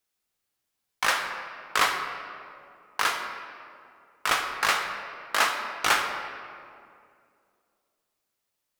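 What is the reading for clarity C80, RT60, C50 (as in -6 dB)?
6.5 dB, 2.3 s, 5.5 dB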